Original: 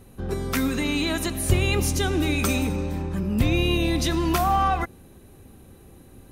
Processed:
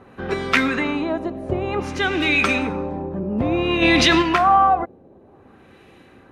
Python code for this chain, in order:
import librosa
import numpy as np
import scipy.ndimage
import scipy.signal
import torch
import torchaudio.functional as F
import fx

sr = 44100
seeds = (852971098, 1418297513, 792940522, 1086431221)

y = fx.highpass(x, sr, hz=360.0, slope=6)
y = fx.high_shelf(y, sr, hz=2800.0, db=11.0)
y = fx.rider(y, sr, range_db=5, speed_s=2.0)
y = fx.filter_lfo_lowpass(y, sr, shape='sine', hz=0.55, low_hz=600.0, high_hz=2500.0, q=1.4)
y = fx.env_flatten(y, sr, amount_pct=70, at=(3.81, 4.21), fade=0.02)
y = y * librosa.db_to_amplitude(4.5)